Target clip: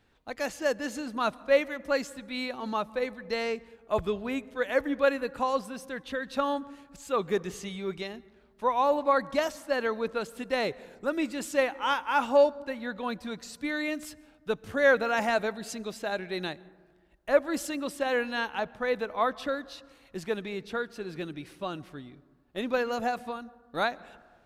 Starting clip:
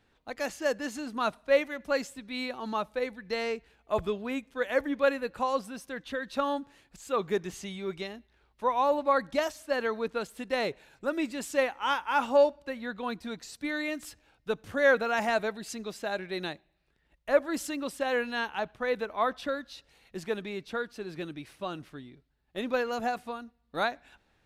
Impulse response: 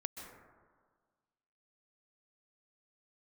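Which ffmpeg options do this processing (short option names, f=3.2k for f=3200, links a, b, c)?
-filter_complex "[0:a]asplit=2[a][b];[1:a]atrim=start_sample=2205,lowshelf=f=240:g=10[c];[b][c]afir=irnorm=-1:irlink=0,volume=-16dB[d];[a][d]amix=inputs=2:normalize=0"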